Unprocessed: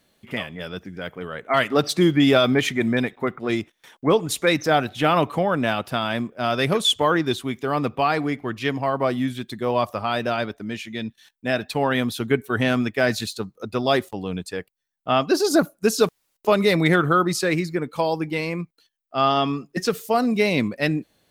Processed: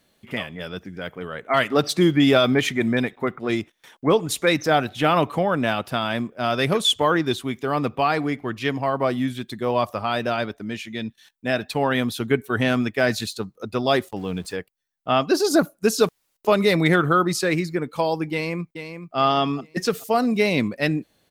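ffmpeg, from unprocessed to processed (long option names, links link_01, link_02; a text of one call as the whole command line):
ffmpeg -i in.wav -filter_complex "[0:a]asettb=1/sr,asplit=3[link_01][link_02][link_03];[link_01]atrim=end=14.164[link_04];[link_02]atrim=start=14.16:end=14.56,asetpts=PTS-STARTPTS,afade=type=in:duration=0.004:curve=qsin,afade=type=out:start_time=0.396:duration=0.004:curve=qsin,aeval=exprs='val(0)+0.5*0.00708*sgn(val(0))':channel_layout=same[link_05];[link_03]atrim=start=14.556[link_06];[link_04][link_05]acrossfade=duration=0.004:curve1=hsin:curve2=qsin[link_07];[link_07][link_06]acrossfade=duration=0.004:curve1=qsin:curve2=hsin,asplit=2[link_08][link_09];[link_09]afade=type=in:start_time=18.32:duration=0.01,afade=type=out:start_time=19.17:duration=0.01,aecho=0:1:430|860|1290:0.354813|0.106444|0.0319332[link_10];[link_08][link_10]amix=inputs=2:normalize=0" out.wav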